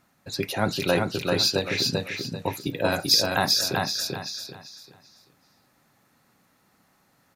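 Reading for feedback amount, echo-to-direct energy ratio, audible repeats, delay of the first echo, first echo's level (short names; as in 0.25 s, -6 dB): 30%, -2.5 dB, 4, 0.39 s, -3.0 dB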